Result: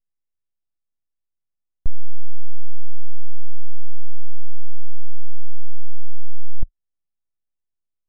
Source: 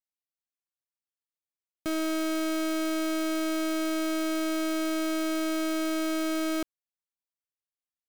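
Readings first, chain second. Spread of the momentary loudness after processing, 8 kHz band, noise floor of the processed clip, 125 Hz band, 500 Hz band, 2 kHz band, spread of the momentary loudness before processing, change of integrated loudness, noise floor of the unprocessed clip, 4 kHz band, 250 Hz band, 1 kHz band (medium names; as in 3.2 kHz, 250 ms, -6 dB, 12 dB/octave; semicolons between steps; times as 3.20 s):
0 LU, under -40 dB, -79 dBFS, no reading, -32.0 dB, under -40 dB, 2 LU, -10.0 dB, under -85 dBFS, under -40 dB, -25.0 dB, -34.0 dB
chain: full-wave rectifier; tilt EQ -4 dB/octave; trim -1 dB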